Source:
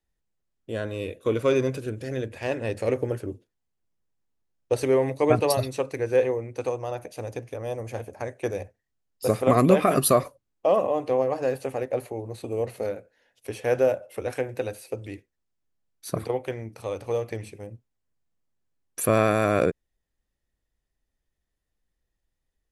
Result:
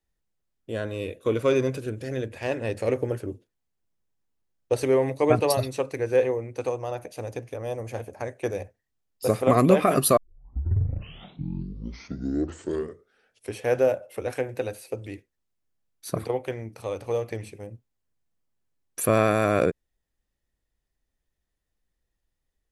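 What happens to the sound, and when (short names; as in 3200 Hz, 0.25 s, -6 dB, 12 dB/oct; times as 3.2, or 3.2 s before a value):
10.17 tape start 3.45 s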